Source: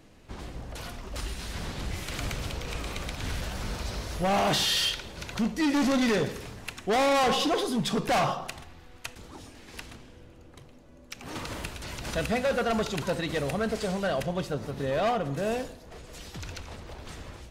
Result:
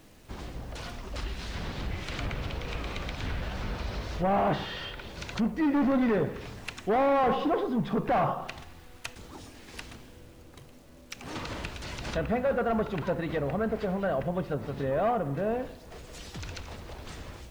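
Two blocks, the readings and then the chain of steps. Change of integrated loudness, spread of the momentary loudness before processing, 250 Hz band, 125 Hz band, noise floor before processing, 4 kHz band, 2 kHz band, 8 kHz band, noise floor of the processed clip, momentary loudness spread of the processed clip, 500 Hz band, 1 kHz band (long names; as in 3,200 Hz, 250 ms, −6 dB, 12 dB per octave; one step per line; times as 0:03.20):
−1.5 dB, 19 LU, 0.0 dB, 0.0 dB, −51 dBFS, −10.0 dB, −4.0 dB, −11.5 dB, −51 dBFS, 18 LU, 0.0 dB, −0.5 dB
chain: treble cut that deepens with the level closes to 1,500 Hz, closed at −25.5 dBFS
bit reduction 10 bits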